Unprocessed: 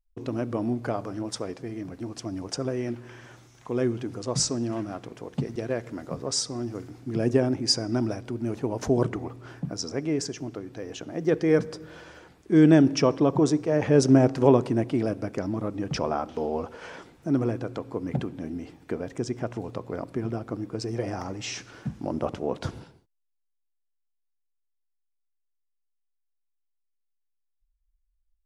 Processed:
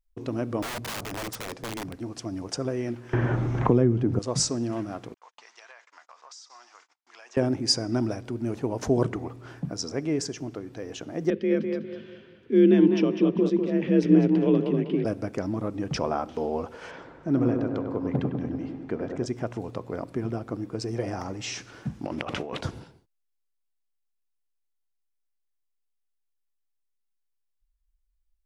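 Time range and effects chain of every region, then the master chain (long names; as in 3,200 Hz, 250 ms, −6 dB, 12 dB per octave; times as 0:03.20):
0:00.62–0:01.97: low-shelf EQ 66 Hz +9 dB + wrap-around overflow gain 28.5 dB
0:03.13–0:04.19: spectral tilt −3.5 dB per octave + multiband upward and downward compressor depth 100%
0:05.14–0:07.37: noise gate −41 dBFS, range −36 dB + Chebyshev band-pass filter 920–6,900 Hz, order 3 + downward compressor 10 to 1, threshold −44 dBFS
0:11.30–0:15.05: drawn EQ curve 300 Hz 0 dB, 770 Hz −18 dB, 3,000 Hz +1 dB, 7,200 Hz −23 dB + frequency shifter +42 Hz + tape delay 200 ms, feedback 37%, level −4.5 dB, low-pass 3,300 Hz
0:16.91–0:19.26: high-frequency loss of the air 120 metres + floating-point word with a short mantissa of 8 bits + delay with a low-pass on its return 99 ms, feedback 66%, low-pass 1,600 Hz, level −4.5 dB
0:22.05–0:22.61: parametric band 2,400 Hz +13.5 dB 2.2 octaves + compressor whose output falls as the input rises −33 dBFS
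whole clip: no processing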